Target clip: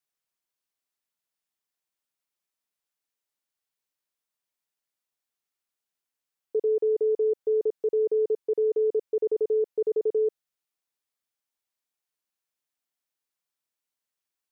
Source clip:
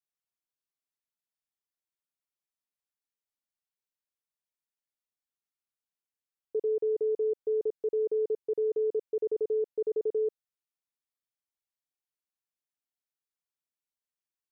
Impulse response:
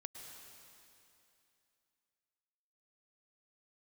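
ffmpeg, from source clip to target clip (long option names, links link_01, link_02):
-af "lowshelf=frequency=190:gain=-6.5,volume=5.5dB"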